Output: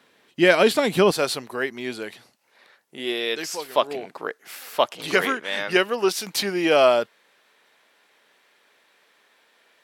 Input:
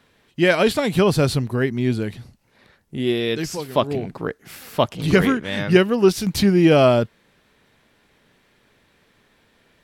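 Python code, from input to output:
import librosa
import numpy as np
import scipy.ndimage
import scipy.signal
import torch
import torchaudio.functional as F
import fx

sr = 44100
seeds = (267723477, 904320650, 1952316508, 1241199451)

y = fx.highpass(x, sr, hz=fx.steps((0.0, 250.0), (1.11, 550.0)), slope=12)
y = y * 10.0 ** (1.0 / 20.0)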